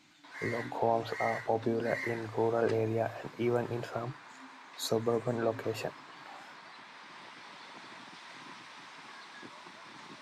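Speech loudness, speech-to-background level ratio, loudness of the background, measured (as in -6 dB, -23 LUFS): -33.5 LUFS, 16.5 dB, -50.0 LUFS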